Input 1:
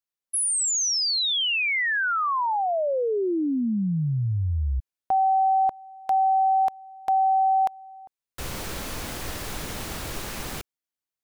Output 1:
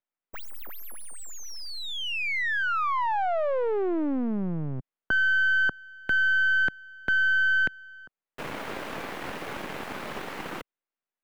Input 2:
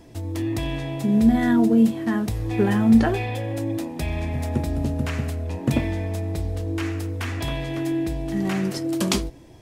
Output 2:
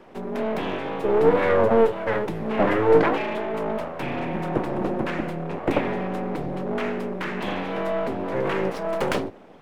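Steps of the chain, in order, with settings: full-wave rectifier; three-band isolator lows -16 dB, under 160 Hz, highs -19 dB, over 2800 Hz; gain +5.5 dB

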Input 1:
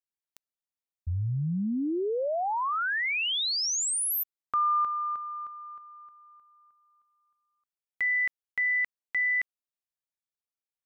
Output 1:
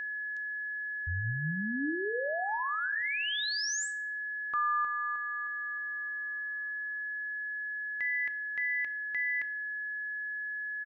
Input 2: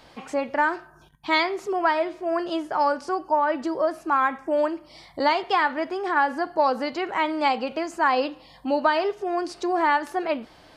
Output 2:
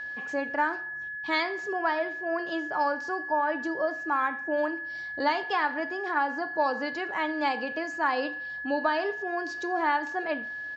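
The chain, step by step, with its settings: downsampling 16000 Hz; FDN reverb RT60 0.59 s, low-frequency decay 0.7×, high-frequency decay 0.85×, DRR 12 dB; whine 1700 Hz -28 dBFS; gain -6 dB

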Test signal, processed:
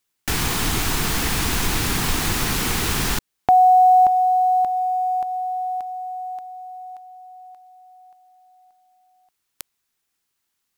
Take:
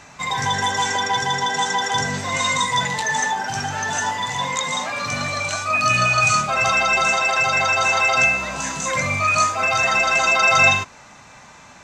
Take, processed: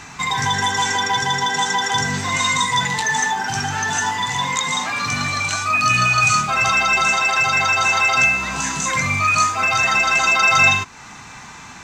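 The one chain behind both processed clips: bell 580 Hz -14 dB 0.36 oct; in parallel at +2.5 dB: compressor 12:1, threshold -31 dBFS; on the sum: companded quantiser 8-bit

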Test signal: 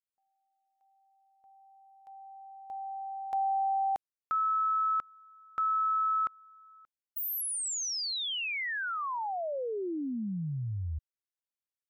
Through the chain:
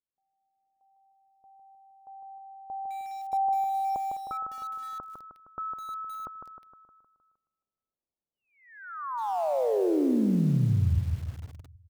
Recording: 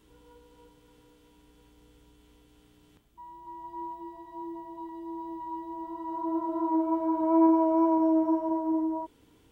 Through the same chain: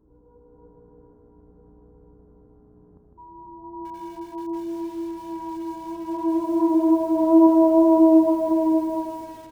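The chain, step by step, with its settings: AGC gain up to 6.5 dB; Gaussian blur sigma 9.8 samples; feedback echo 0.155 s, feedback 53%, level -5 dB; lo-fi delay 0.206 s, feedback 35%, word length 7-bit, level -12 dB; gain +2.5 dB

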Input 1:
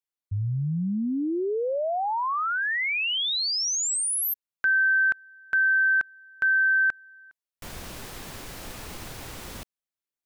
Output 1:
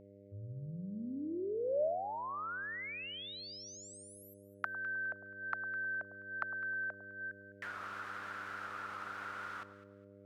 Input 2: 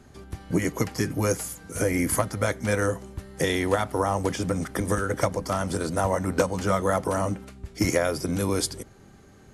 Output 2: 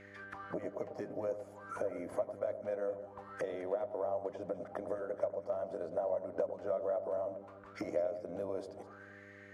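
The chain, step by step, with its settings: auto-wah 610–2100 Hz, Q 8.4, down, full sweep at -26 dBFS; compressor 2:1, threshold -58 dBFS; dynamic EQ 790 Hz, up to -3 dB, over -57 dBFS, Q 1.1; echo with dull and thin repeats by turns 0.103 s, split 1100 Hz, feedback 51%, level -10 dB; buzz 100 Hz, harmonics 6, -72 dBFS 0 dB/oct; gain +14.5 dB

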